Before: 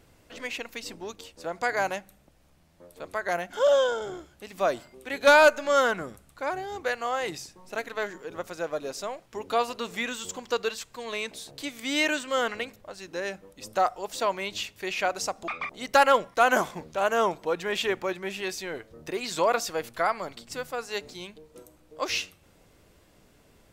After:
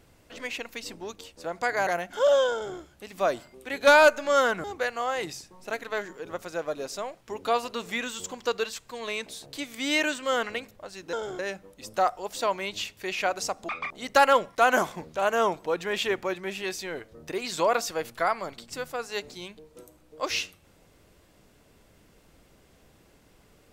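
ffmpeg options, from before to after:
ffmpeg -i in.wav -filter_complex "[0:a]asplit=5[link_01][link_02][link_03][link_04][link_05];[link_01]atrim=end=1.872[link_06];[link_02]atrim=start=3.268:end=6.042[link_07];[link_03]atrim=start=6.688:end=13.182[link_08];[link_04]atrim=start=3.918:end=4.182[link_09];[link_05]atrim=start=13.178[link_10];[link_06][link_07]acrossfade=duration=0.004:curve1=hsin:curve2=hsin[link_11];[link_11][link_08]acrossfade=duration=0.004:curve1=hsin:curve2=hsin[link_12];[link_12][link_09]acrossfade=duration=0.004:curve1=hsin:curve2=hsin[link_13];[link_13][link_10]acrossfade=duration=0.004:curve1=hsin:curve2=hsin" out.wav

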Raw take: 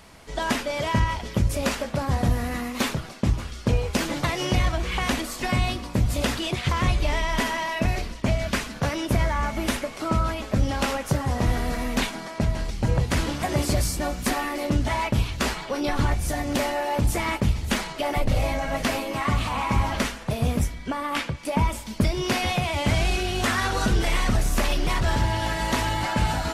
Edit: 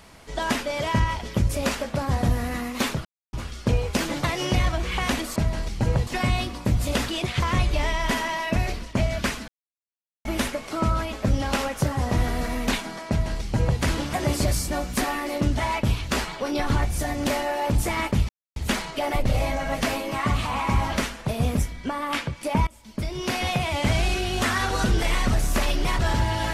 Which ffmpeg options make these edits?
ffmpeg -i in.wav -filter_complex "[0:a]asplit=9[link_01][link_02][link_03][link_04][link_05][link_06][link_07][link_08][link_09];[link_01]atrim=end=3.05,asetpts=PTS-STARTPTS,afade=type=out:start_time=3.046:duration=0.004:curve=hsin[link_10];[link_02]atrim=start=3.05:end=3.33,asetpts=PTS-STARTPTS,volume=0[link_11];[link_03]atrim=start=3.33:end=5.362,asetpts=PTS-STARTPTS,afade=type=in:duration=0.004:curve=hsin[link_12];[link_04]atrim=start=12.378:end=13.092[link_13];[link_05]atrim=start=5.358:end=8.77,asetpts=PTS-STARTPTS,afade=type=out:start_time=3.408:duration=0.004:curve=hsin[link_14];[link_06]atrim=start=8.77:end=9.54,asetpts=PTS-STARTPTS,volume=0[link_15];[link_07]atrim=start=9.54:end=17.58,asetpts=PTS-STARTPTS,afade=type=in:duration=0.004:curve=hsin,afade=type=out:start_time=8.036:duration=0.004:curve=hsin,apad=pad_dur=0.27[link_16];[link_08]atrim=start=17.58:end=21.69,asetpts=PTS-STARTPTS,afade=type=in:duration=0.004:curve=hsin,afade=type=out:start_time=4.106:duration=0.004:curve=hsin:silence=0.0668344[link_17];[link_09]atrim=start=21.69,asetpts=PTS-STARTPTS,afade=type=in:duration=0.86:silence=0.0668344[link_18];[link_10][link_11][link_12]concat=n=3:v=0:a=1[link_19];[link_19][link_13]acrossfade=duration=0.004:curve1=hsin:curve2=hsin[link_20];[link_14][link_15][link_16][link_17][link_18]concat=n=5:v=0:a=1[link_21];[link_20][link_21]acrossfade=duration=0.004:curve1=hsin:curve2=hsin" out.wav

